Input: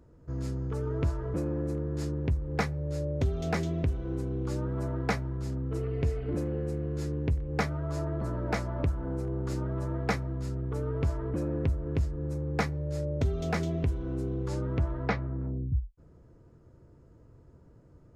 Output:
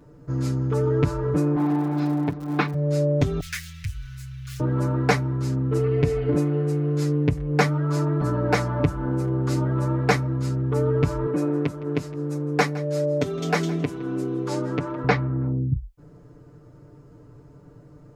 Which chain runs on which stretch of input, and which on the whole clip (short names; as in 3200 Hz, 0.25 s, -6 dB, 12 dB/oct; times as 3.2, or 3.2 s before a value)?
1.55–2.73 minimum comb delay 0.76 ms + speaker cabinet 180–3900 Hz, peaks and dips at 300 Hz +5 dB, 560 Hz -4 dB, 800 Hz +3 dB, 2900 Hz -5 dB + crackle 97/s -44 dBFS
3.4–4.6 median filter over 15 samples + inverse Chebyshev band-stop 210–820 Hz, stop band 50 dB + high shelf 3900 Hz +8.5 dB
11.26–15.04 HPF 210 Hz + echo 0.163 s -18.5 dB
whole clip: low shelf 69 Hz -6.5 dB; comb 6.8 ms, depth 97%; gain +7 dB